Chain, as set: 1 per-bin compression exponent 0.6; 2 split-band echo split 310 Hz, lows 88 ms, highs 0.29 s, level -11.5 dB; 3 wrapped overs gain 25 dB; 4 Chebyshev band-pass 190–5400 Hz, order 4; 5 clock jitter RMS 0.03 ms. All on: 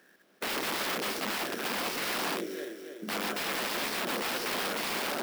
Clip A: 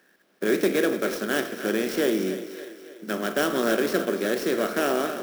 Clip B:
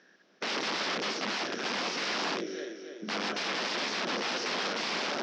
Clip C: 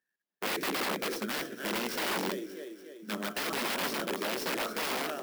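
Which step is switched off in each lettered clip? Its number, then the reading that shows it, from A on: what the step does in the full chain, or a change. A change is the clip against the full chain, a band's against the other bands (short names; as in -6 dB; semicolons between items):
3, crest factor change +1.5 dB; 5, 8 kHz band -3.5 dB; 1, 250 Hz band +2.5 dB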